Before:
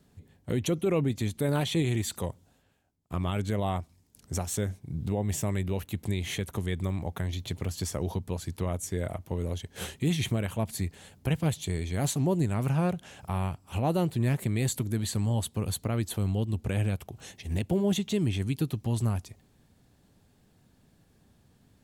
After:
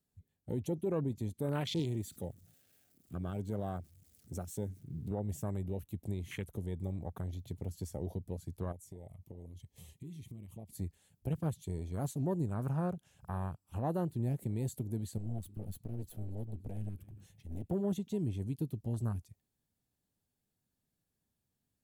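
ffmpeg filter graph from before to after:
ffmpeg -i in.wav -filter_complex "[0:a]asettb=1/sr,asplit=3[link_01][link_02][link_03];[link_01]atrim=end=1.794[link_04];[link_02]atrim=start=1.79:end=5.11,asetpts=PTS-STARTPTS,afade=type=in:duration=0.004:curve=qsin,afade=type=out:start_time=3.316:duration=0.004:curve=qsin,aeval=exprs='val(0)+0.5*0.00562*sgn(val(0))':channel_layout=same,highpass=87,equalizer=frequency=970:width=3.7:gain=-13[link_05];[link_03]atrim=start=5.106[link_06];[link_04][link_05]acrossfade=duration=0.004:curve1=hsin:curve2=qsin[link_07];[link_07][link_06]acrossfade=duration=0.004:curve1=qsin:curve2=hsin,asettb=1/sr,asplit=3[link_08][link_09][link_10];[link_08]atrim=end=8.724[link_11];[link_09]atrim=start=8.72:end=10.75,asetpts=PTS-STARTPTS,afade=type=in:duration=0.004:curve=qsin,afade=type=out:start_time=2.026:duration=0.004:curve=qsin,acompressor=threshold=-35dB:ratio=10:attack=3.2:release=140:knee=1:detection=peak,asuperstop=centerf=1500:order=4:qfactor=2.4[link_12];[link_10]atrim=start=10.746[link_13];[link_11][link_12]acrossfade=duration=0.004:curve1=hsin:curve2=qsin[link_14];[link_14][link_13]acrossfade=duration=0.004:curve1=qsin:curve2=hsin,asettb=1/sr,asplit=3[link_15][link_16][link_17];[link_15]atrim=end=15.184[link_18];[link_16]atrim=start=15.18:end=17.66,asetpts=PTS-STARTPTS,afade=type=in:duration=0.004:curve=qsin,afade=type=out:start_time=2.476:duration=0.004:curve=qsin,equalizer=frequency=6600:width_type=o:width=1.3:gain=-3.5,aecho=1:1:293|586|879:0.106|0.0403|0.0153,atrim=end_sample=109368,aeval=exprs='clip(val(0),-1,0.00891)':channel_layout=same[link_19];[link_17]atrim=start=17.656[link_20];[link_18][link_19]acrossfade=duration=0.004:curve1=hsin:curve2=qsin[link_21];[link_21][link_20]acrossfade=duration=0.004:curve1=qsin:curve2=hsin,afwtdn=0.0158,aemphasis=mode=production:type=50kf,volume=-7.5dB" out.wav

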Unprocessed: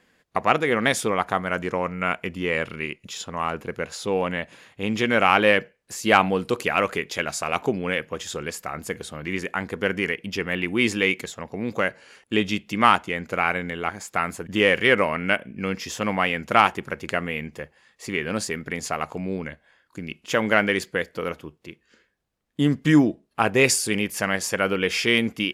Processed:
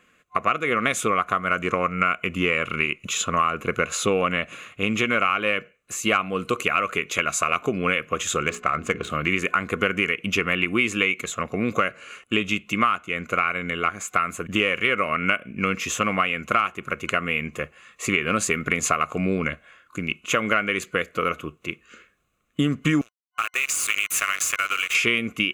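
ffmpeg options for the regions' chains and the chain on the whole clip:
ffmpeg -i in.wav -filter_complex "[0:a]asettb=1/sr,asplit=3[link_01][link_02][link_03];[link_01]atrim=end=8.434[link_04];[link_02]atrim=start=8.43:end=9.1,asetpts=PTS-STARTPTS,afade=type=in:duration=0.004:curve=qsin,afade=type=out:start_time=0.666:duration=0.004:curve=qsin,bandreject=frequency=60:width_type=h:width=6,bandreject=frequency=120:width_type=h:width=6,bandreject=frequency=180:width_type=h:width=6,bandreject=frequency=240:width_type=h:width=6,bandreject=frequency=300:width_type=h:width=6,bandreject=frequency=360:width_type=h:width=6,bandreject=frequency=420:width_type=h:width=6,adynamicsmooth=sensitivity=4.5:basefreq=2800[link_05];[link_03]atrim=start=9.096[link_06];[link_04][link_05]acrossfade=duration=0.004:curve1=hsin:curve2=qsin[link_07];[link_07][link_06]acrossfade=duration=0.004:curve1=qsin:curve2=hsin,asettb=1/sr,asplit=3[link_08][link_09][link_10];[link_08]atrim=end=23.014[link_11];[link_09]atrim=start=23.01:end=24.95,asetpts=PTS-STARTPTS,afade=type=in:duration=0.004:curve=qsin,afade=type=out:start_time=1.936:duration=0.004:curve=qsin,highpass=1500,acompressor=threshold=-29dB:ratio=12:attack=3.2:release=140:knee=1:detection=peak,acrusher=bits=5:mix=0:aa=0.5[link_12];[link_10]atrim=start=24.946[link_13];[link_11][link_12]acrossfade=duration=0.004:curve1=hsin:curve2=qsin[link_14];[link_14][link_13]acrossfade=duration=0.004:curve1=qsin:curve2=hsin,dynaudnorm=framelen=300:gausssize=5:maxgain=11.5dB,superequalizer=9b=0.447:10b=2.82:12b=2.24:14b=0.447:15b=1.58,acompressor=threshold=-18dB:ratio=6" out.wav

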